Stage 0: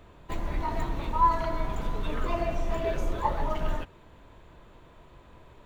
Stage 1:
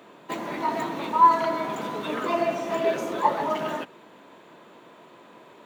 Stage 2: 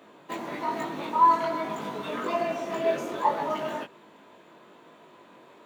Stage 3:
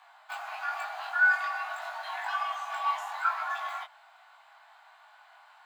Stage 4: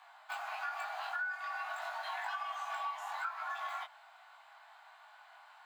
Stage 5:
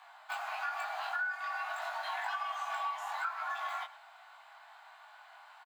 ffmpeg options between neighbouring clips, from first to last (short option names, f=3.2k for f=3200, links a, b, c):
-af "highpass=f=200:w=0.5412,highpass=f=200:w=1.3066,volume=6.5dB"
-af "flanger=delay=18.5:depth=2.7:speed=1.2"
-af "afreqshift=480,volume=-4dB"
-af "acompressor=threshold=-34dB:ratio=10,volume=-1.5dB"
-af "aecho=1:1:109:0.126,volume=2.5dB"